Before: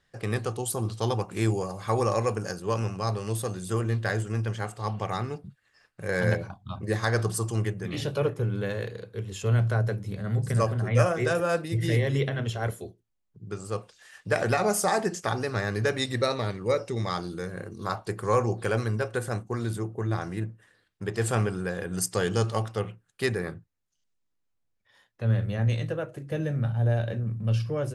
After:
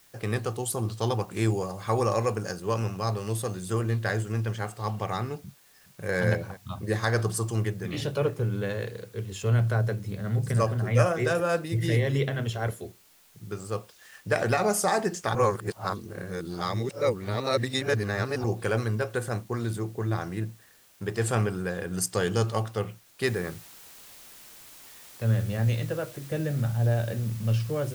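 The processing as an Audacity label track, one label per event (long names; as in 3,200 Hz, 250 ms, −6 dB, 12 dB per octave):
5.410000	6.140000	delay throw 420 ms, feedback 45%, level −17.5 dB
15.350000	18.440000	reverse
23.260000	23.260000	noise floor change −59 dB −49 dB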